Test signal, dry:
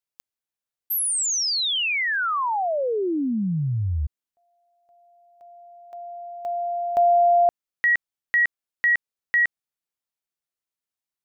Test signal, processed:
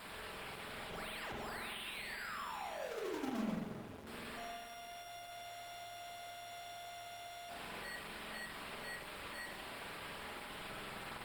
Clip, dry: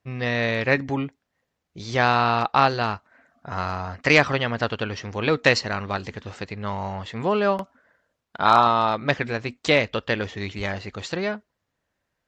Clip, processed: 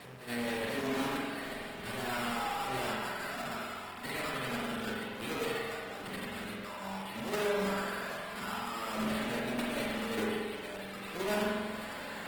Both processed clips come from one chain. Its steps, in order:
sign of each sample alone
high-pass filter 150 Hz 12 dB per octave
mains-hum notches 50/100/150/200/250/300/350/400/450/500 Hz
noise gate −21 dBFS, range −33 dB
decimation without filtering 7×
flutter between parallel walls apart 7.1 metres, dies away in 0.33 s
spring reverb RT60 1.6 s, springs 46 ms, chirp 50 ms, DRR −2.5 dB
level +10 dB
Opus 16 kbit/s 48,000 Hz

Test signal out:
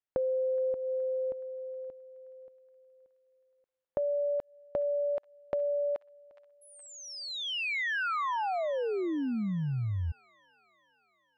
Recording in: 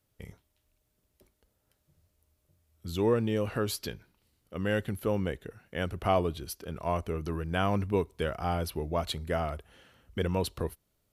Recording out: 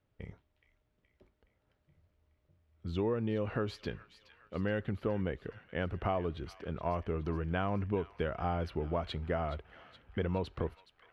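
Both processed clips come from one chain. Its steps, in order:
low-pass filter 2,500 Hz 12 dB per octave
downward compressor, threshold −29 dBFS
delay with a high-pass on its return 421 ms, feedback 61%, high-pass 1,600 Hz, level −13 dB

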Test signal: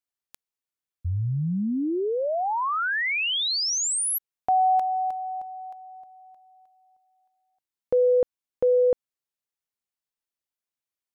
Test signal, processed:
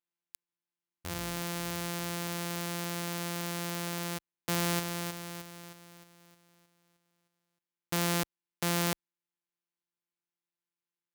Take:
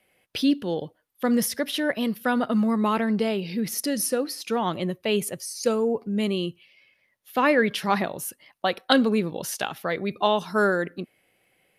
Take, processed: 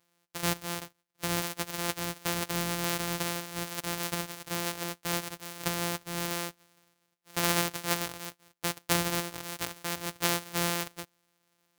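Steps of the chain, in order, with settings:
samples sorted by size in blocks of 256 samples
spectral tilt +2.5 dB per octave
level −7 dB

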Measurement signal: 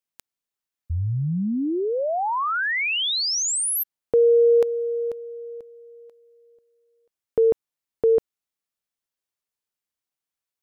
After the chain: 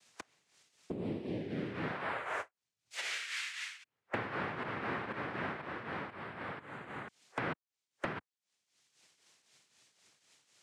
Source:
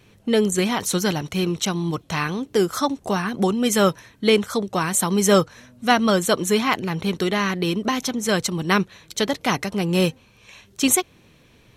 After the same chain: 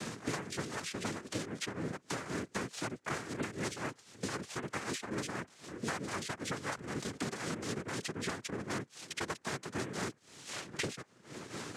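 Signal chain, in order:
brick-wall band-stop 1,100–3,000 Hz
low-shelf EQ 230 Hz −9 dB
downward compressor 4 to 1, threshold −35 dBFS
shaped tremolo triangle 3.9 Hz, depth 70%
cochlear-implant simulation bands 3
multiband upward and downward compressor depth 100%

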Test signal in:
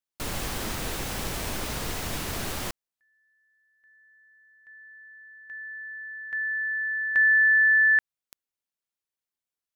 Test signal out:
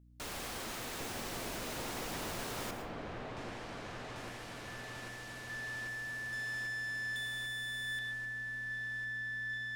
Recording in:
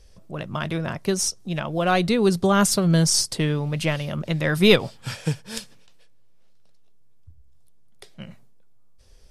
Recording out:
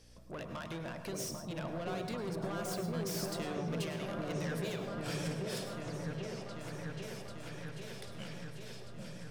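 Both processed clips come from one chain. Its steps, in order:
phase distortion by the signal itself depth 0.11 ms
low-shelf EQ 170 Hz −10 dB
mains-hum notches 50/100/150/200 Hz
downward compressor 6 to 1, threshold −32 dBFS
soft clipping −35 dBFS
mains hum 60 Hz, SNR 16 dB
on a send: echo whose low-pass opens from repeat to repeat 792 ms, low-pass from 750 Hz, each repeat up 1 octave, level 0 dB
on the sum: dense smooth reverb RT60 0.52 s, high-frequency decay 0.55×, pre-delay 90 ms, DRR 7 dB
level −2.5 dB

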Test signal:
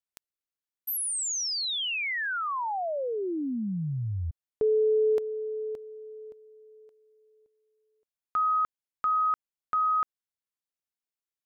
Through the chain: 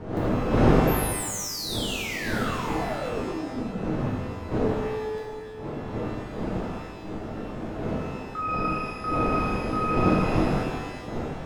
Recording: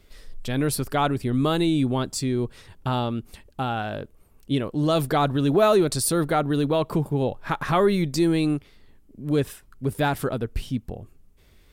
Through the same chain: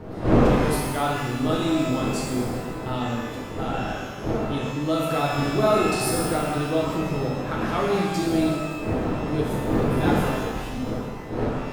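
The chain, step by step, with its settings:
wind on the microphone 390 Hz −25 dBFS
reverb with rising layers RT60 1.4 s, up +12 semitones, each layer −8 dB, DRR −4 dB
level −8 dB

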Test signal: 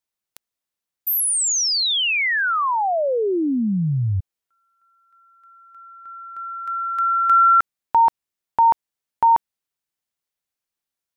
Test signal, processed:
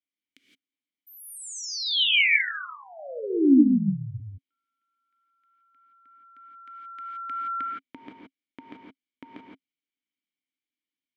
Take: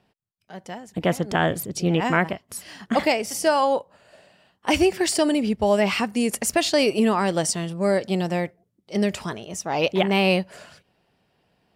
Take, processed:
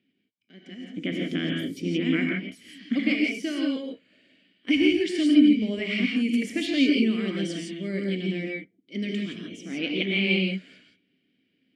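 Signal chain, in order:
formant filter i
reverb whose tail is shaped and stops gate 190 ms rising, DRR −0.5 dB
level +6.5 dB

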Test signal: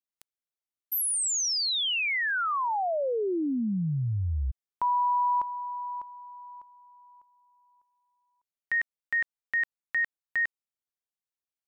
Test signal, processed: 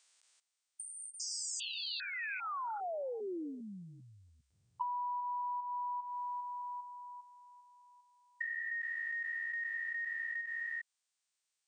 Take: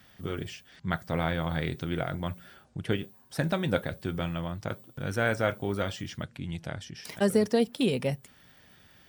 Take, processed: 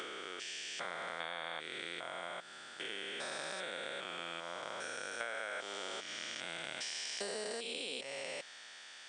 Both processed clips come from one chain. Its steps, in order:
spectrum averaged block by block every 400 ms
high-pass filter 480 Hz 12 dB per octave
spectral tilt +3 dB per octave
downward compressor 12 to 1, threshold −43 dBFS
linear-phase brick-wall low-pass 9,300 Hz
level +6.5 dB

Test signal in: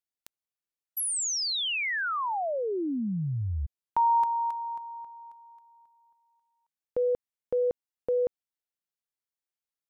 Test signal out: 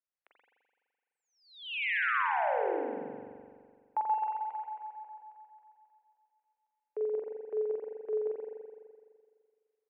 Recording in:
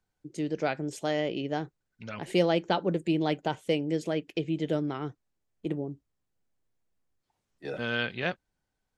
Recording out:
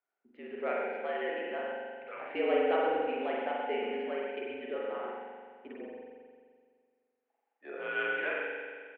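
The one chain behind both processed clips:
far-end echo of a speakerphone 130 ms, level −7 dB
spring reverb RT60 1.9 s, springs 42 ms, chirp 75 ms, DRR −4 dB
single-sideband voice off tune −65 Hz 480–2,700 Hz
level −5.5 dB

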